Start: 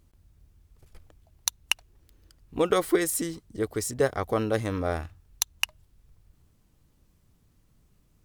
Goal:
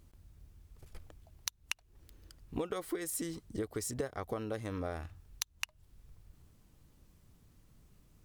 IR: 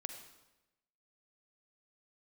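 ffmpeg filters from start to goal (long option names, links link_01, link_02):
-af "acompressor=threshold=-34dB:ratio=20,volume=1dB"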